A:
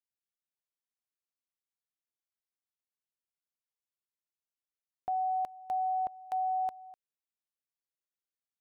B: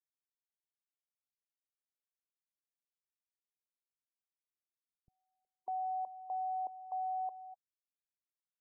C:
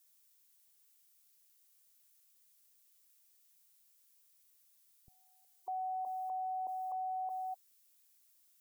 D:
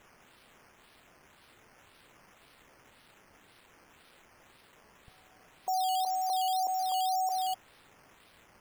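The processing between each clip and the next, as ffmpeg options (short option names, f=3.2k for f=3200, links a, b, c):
-filter_complex "[0:a]afftfilt=real='re*gte(hypot(re,im),0.0112)':imag='im*gte(hypot(re,im),0.0112)':win_size=1024:overlap=0.75,alimiter=level_in=9.5dB:limit=-24dB:level=0:latency=1:release=17,volume=-9.5dB,acrossover=split=180[a][b];[b]adelay=600[c];[a][c]amix=inputs=2:normalize=0"
-af "alimiter=level_in=20.5dB:limit=-24dB:level=0:latency=1:release=19,volume=-20.5dB,crystalizer=i=6:c=0,volume=8dB"
-af "acrusher=samples=9:mix=1:aa=0.000001:lfo=1:lforange=5.4:lforate=1.9,volume=8.5dB"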